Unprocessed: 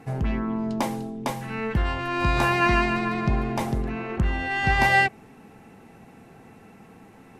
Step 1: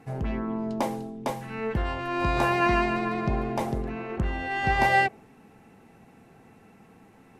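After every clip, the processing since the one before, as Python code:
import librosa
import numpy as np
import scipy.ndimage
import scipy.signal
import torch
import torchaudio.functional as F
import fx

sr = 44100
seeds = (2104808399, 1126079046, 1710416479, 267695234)

y = fx.dynamic_eq(x, sr, hz=530.0, q=0.85, threshold_db=-36.0, ratio=4.0, max_db=7)
y = y * librosa.db_to_amplitude(-5.0)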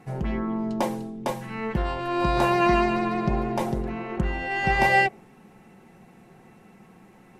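y = x + 0.43 * np.pad(x, (int(5.5 * sr / 1000.0), 0))[:len(x)]
y = y * librosa.db_to_amplitude(1.5)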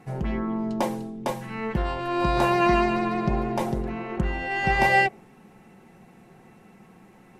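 y = x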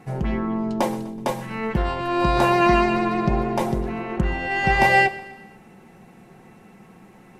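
y = fx.echo_feedback(x, sr, ms=125, feedback_pct=50, wet_db=-18.0)
y = y * librosa.db_to_amplitude(3.5)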